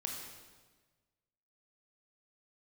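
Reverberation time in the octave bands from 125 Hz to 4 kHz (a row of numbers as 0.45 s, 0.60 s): 1.7 s, 1.5 s, 1.4 s, 1.3 s, 1.2 s, 1.2 s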